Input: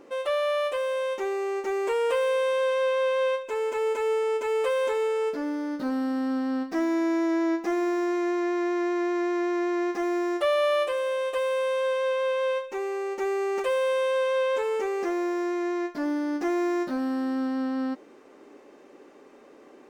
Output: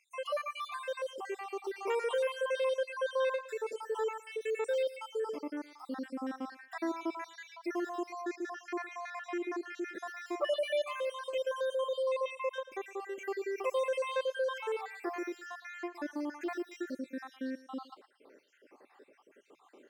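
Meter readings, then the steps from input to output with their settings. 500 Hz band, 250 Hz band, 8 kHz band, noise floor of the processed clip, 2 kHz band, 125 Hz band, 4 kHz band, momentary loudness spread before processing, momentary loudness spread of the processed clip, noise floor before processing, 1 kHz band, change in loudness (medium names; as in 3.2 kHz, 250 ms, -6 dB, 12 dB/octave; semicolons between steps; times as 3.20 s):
-9.5 dB, -14.0 dB, -7.5 dB, -65 dBFS, -7.5 dB, no reading, -7.0 dB, 5 LU, 10 LU, -51 dBFS, -8.5 dB, -10.0 dB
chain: random holes in the spectrogram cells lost 67%; bass shelf 290 Hz -11.5 dB; hum notches 50/100/150 Hz; thinning echo 113 ms, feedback 24%, high-pass 420 Hz, level -15 dB; trim -2.5 dB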